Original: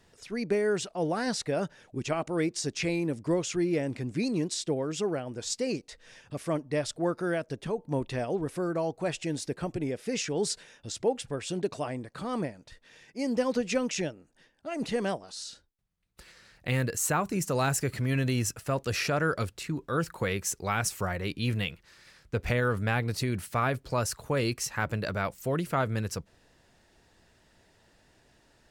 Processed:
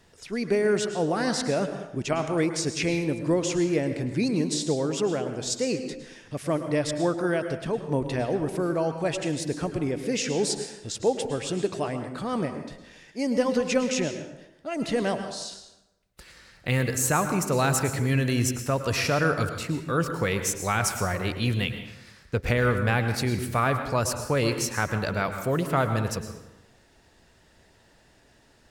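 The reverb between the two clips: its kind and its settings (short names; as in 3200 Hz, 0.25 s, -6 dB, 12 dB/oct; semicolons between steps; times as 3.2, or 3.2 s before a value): plate-style reverb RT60 0.94 s, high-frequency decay 0.65×, pre-delay 95 ms, DRR 7.5 dB; gain +3.5 dB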